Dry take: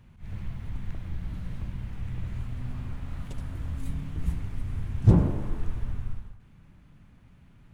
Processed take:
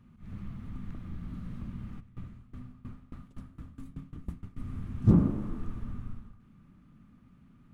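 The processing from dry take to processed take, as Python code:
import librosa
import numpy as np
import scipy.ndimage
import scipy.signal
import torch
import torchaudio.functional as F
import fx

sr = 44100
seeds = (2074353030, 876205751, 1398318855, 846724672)

y = fx.small_body(x, sr, hz=(230.0, 1200.0), ring_ms=25, db=13)
y = fx.tremolo_decay(y, sr, direction='decaying', hz=fx.line((1.99, 2.3), (4.56, 7.6)), depth_db=21, at=(1.99, 4.56), fade=0.02)
y = F.gain(torch.from_numpy(y), -8.5).numpy()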